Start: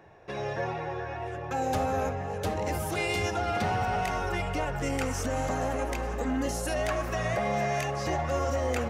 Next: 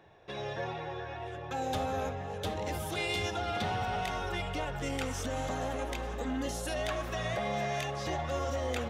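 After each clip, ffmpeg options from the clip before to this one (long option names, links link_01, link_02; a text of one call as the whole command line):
ffmpeg -i in.wav -af "equalizer=frequency=3500:width_type=o:width=0.41:gain=11,volume=-5dB" out.wav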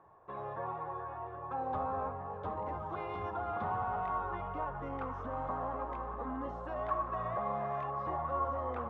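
ffmpeg -i in.wav -af "lowpass=frequency=1100:width_type=q:width=6.1,volume=-7dB" out.wav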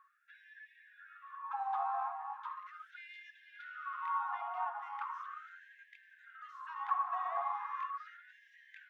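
ffmpeg -i in.wav -af "afftfilt=real='re*gte(b*sr/1024,660*pow(1600/660,0.5+0.5*sin(2*PI*0.38*pts/sr)))':imag='im*gte(b*sr/1024,660*pow(1600/660,0.5+0.5*sin(2*PI*0.38*pts/sr)))':win_size=1024:overlap=0.75,volume=1.5dB" out.wav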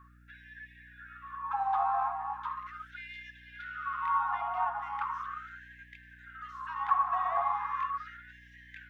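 ffmpeg -i in.wav -af "aeval=exprs='val(0)+0.000631*(sin(2*PI*60*n/s)+sin(2*PI*2*60*n/s)/2+sin(2*PI*3*60*n/s)/3+sin(2*PI*4*60*n/s)/4+sin(2*PI*5*60*n/s)/5)':channel_layout=same,volume=6.5dB" out.wav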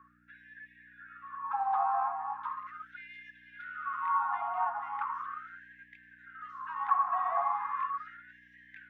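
ffmpeg -i in.wav -filter_complex "[0:a]acrossover=split=180 2300:gain=0.126 1 0.251[link_01][link_02][link_03];[link_01][link_02][link_03]amix=inputs=3:normalize=0" out.wav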